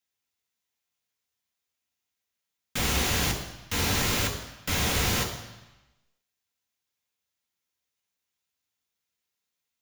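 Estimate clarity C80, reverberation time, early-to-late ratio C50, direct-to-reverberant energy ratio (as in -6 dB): 10.0 dB, 1.0 s, 7.5 dB, 1.0 dB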